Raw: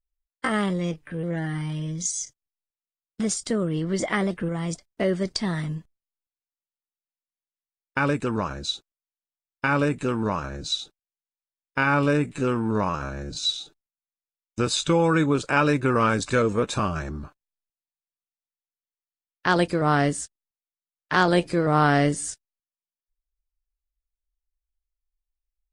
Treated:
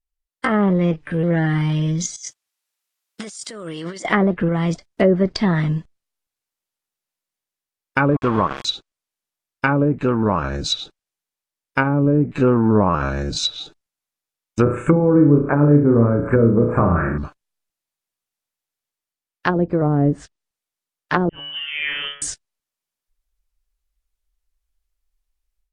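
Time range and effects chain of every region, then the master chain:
0:02.16–0:04.05: high-pass filter 1,000 Hz 6 dB per octave + compressor whose output falls as the input rises −42 dBFS
0:08.11–0:08.65: high-shelf EQ 5,300 Hz +6 dB + centre clipping without the shift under −29 dBFS + hollow resonant body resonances 1,100/3,300 Hz, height 10 dB, ringing for 35 ms
0:14.62–0:17.18: Chebyshev band-stop filter 2,100–8,500 Hz, order 3 + parametric band 1,900 Hz +2.5 dB 2.2 octaves + flutter between parallel walls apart 5.9 metres, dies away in 0.48 s
0:21.29–0:22.22: tuned comb filter 70 Hz, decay 0.7 s, harmonics odd, mix 90% + voice inversion scrambler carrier 3,300 Hz
whole clip: treble cut that deepens with the level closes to 410 Hz, closed at −17 dBFS; automatic gain control gain up to 10 dB

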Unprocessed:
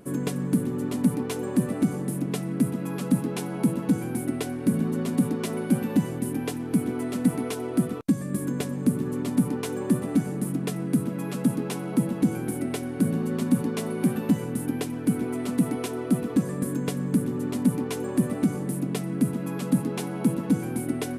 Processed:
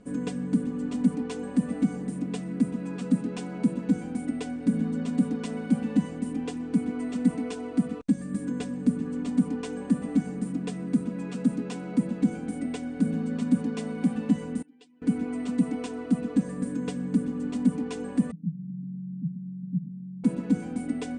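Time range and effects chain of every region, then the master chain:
0:14.62–0:15.02: expanding power law on the bin magnitudes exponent 1.6 + resonant band-pass 4,200 Hz, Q 1.4
0:18.31–0:20.24: flat-topped band-pass 160 Hz, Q 4.4 + spectral tilt −2 dB per octave
whole clip: Chebyshev low-pass filter 8,900 Hz, order 6; low-shelf EQ 220 Hz +7 dB; comb filter 4.1 ms, depth 83%; level −7.5 dB

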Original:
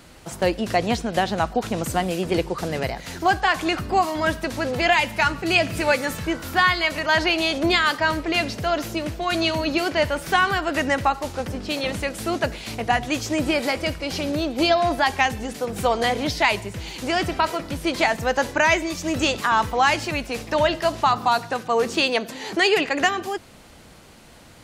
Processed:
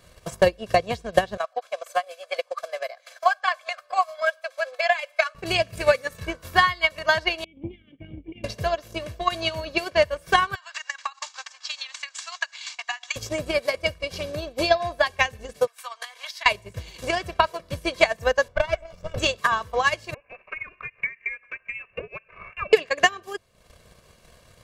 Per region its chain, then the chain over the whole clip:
0:01.37–0:05.35: elliptic high-pass filter 560 Hz + high-shelf EQ 8,900 Hz −6.5 dB + notch comb filter 930 Hz
0:07.44–0:08.44: formant resonators in series i + tilt shelving filter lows +5.5 dB, about 1,100 Hz + phaser with its sweep stopped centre 2,400 Hz, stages 4
0:10.55–0:13.16: Chebyshev band-pass filter 830–7,300 Hz, order 4 + spectral tilt +3 dB per octave + downward compressor 8 to 1, threshold −25 dBFS
0:15.67–0:16.46: high-pass filter 1,000 Hz 24 dB per octave + downward compressor 5 to 1, threshold −28 dBFS
0:18.48–0:19.18: lower of the sound and its delayed copy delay 1.4 ms + low-pass filter 1,100 Hz 6 dB per octave
0:20.14–0:22.73: high-pass filter 510 Hz 24 dB per octave + downward compressor 2 to 1, threshold −36 dBFS + voice inversion scrambler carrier 3,100 Hz
whole clip: comb filter 1.8 ms, depth 68%; transient designer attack +12 dB, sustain −10 dB; level −8.5 dB

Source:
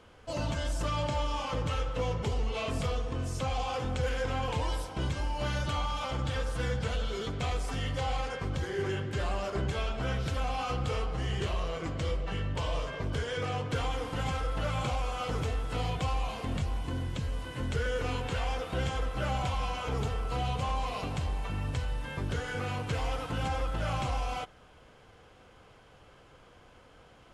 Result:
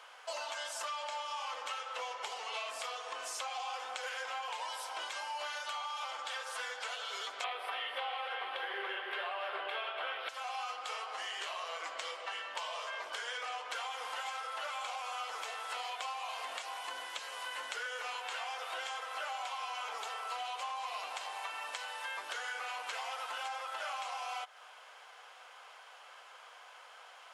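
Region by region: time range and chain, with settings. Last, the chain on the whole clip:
0:07.44–0:10.29: drawn EQ curve 140 Hz 0 dB, 410 Hz +14 dB, 790 Hz +8 dB, 3,400 Hz +9 dB, 6,800 Hz −21 dB, 11,000 Hz 0 dB + echo with a time of its own for lows and highs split 450 Hz, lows 97 ms, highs 288 ms, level −7 dB
whole clip: high-pass filter 730 Hz 24 dB per octave; downward compressor, threshold −44 dBFS; level +6.5 dB

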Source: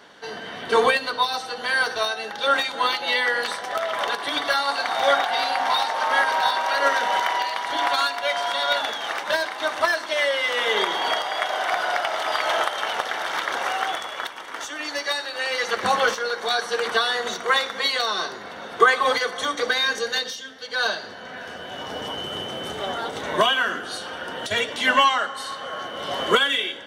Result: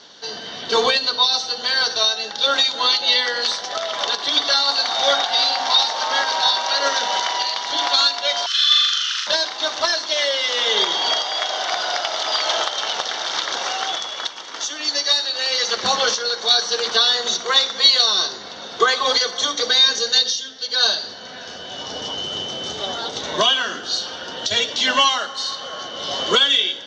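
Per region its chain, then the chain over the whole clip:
0:08.46–0:09.27: Butterworth high-pass 1,500 Hz 72 dB per octave + flutter between parallel walls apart 7 metres, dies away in 1 s + frequency shifter −240 Hz
whole clip: Butterworth low-pass 6,600 Hz 48 dB per octave; high shelf with overshoot 3,000 Hz +10.5 dB, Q 1.5

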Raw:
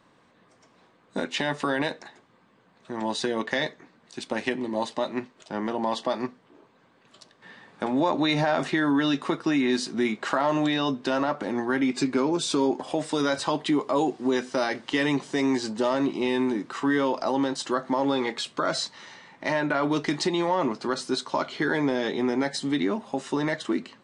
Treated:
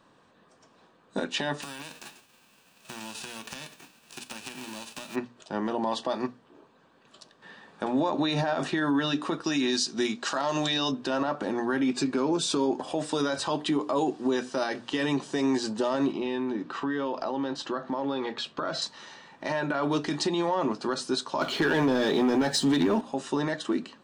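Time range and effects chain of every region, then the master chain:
0:01.61–0:05.14: spectral envelope flattened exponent 0.3 + parametric band 2,600 Hz +9 dB 0.25 octaves + downward compressor 12 to 1, threshold −35 dBFS
0:09.44–0:10.92: parametric band 5,700 Hz +12.5 dB 1.6 octaves + expander for the loud parts, over −32 dBFS
0:16.12–0:18.82: low-pass filter 4,200 Hz + downward compressor 4 to 1, threshold −26 dBFS
0:21.41–0:23.01: double-tracking delay 12 ms −14 dB + leveller curve on the samples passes 2
whole clip: mains-hum notches 60/120/180/240/300 Hz; brickwall limiter −17.5 dBFS; notch filter 2,100 Hz, Q 6

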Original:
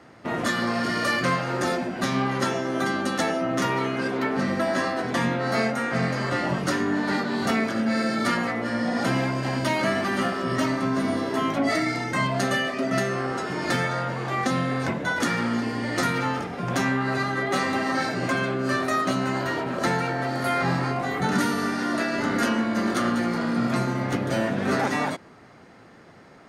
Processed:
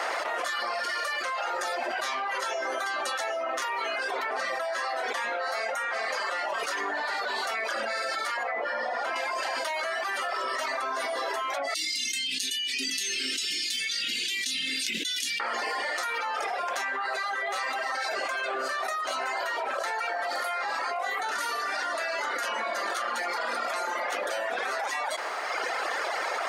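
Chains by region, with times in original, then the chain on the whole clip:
0:08.43–0:09.16: low-pass filter 1,700 Hz 6 dB per octave + mains-hum notches 60/120/180/240/300/360/420/480/540 Hz
0:11.74–0:15.40: elliptic band-stop filter 250–2,900 Hz, stop band 70 dB + parametric band 750 Hz −14 dB 0.41 octaves
whole clip: reverb reduction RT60 1.1 s; high-pass filter 580 Hz 24 dB per octave; envelope flattener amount 100%; level −7.5 dB

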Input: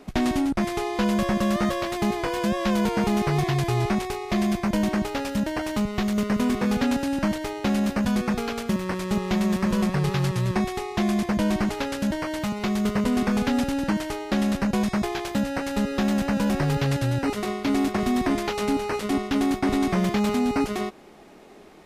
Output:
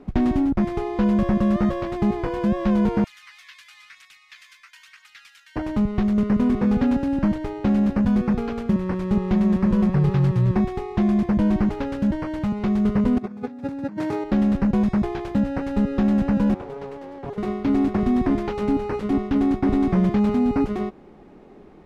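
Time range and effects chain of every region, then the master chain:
0:03.04–0:05.56: Bessel high-pass filter 2,600 Hz, order 8 + phase shifter 1 Hz, delay 2 ms, feedback 36%
0:13.18–0:14.24: high-pass filter 110 Hz 24 dB per octave + notch filter 3,000 Hz, Q 7.6 + compressor whose output falls as the input rises −30 dBFS, ratio −0.5
0:16.54–0:17.38: four-pole ladder high-pass 370 Hz, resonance 55% + highs frequency-modulated by the lows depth 0.85 ms
whole clip: low-pass filter 1,100 Hz 6 dB per octave; low-shelf EQ 260 Hz +7.5 dB; notch filter 650 Hz, Q 12

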